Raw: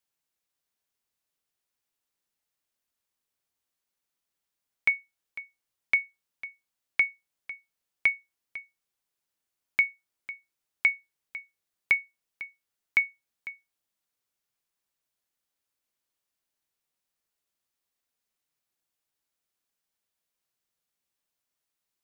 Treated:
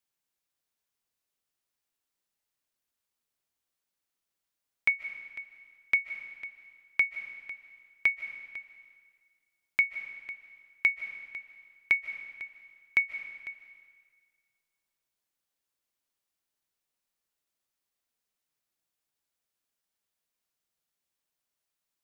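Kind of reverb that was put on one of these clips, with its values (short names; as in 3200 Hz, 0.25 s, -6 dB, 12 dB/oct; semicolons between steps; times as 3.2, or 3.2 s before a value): digital reverb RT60 1.7 s, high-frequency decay 0.95×, pre-delay 0.11 s, DRR 10 dB; gain -1.5 dB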